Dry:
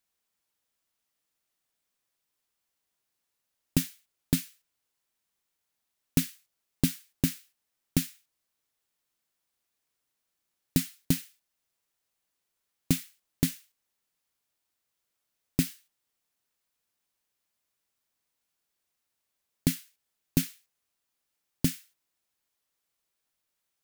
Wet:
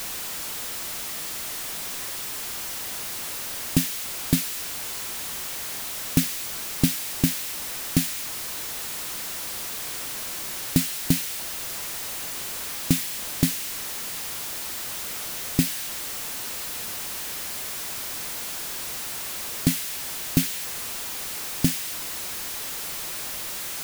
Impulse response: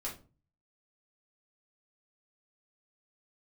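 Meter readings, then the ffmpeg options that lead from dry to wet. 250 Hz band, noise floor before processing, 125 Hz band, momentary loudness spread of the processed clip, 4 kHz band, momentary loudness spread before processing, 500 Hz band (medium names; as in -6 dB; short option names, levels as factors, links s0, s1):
+5.0 dB, -83 dBFS, +4.5 dB, 6 LU, +12.5 dB, 10 LU, +7.5 dB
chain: -af "aeval=exprs='val(0)+0.5*0.0335*sgn(val(0))':c=same,volume=1.5"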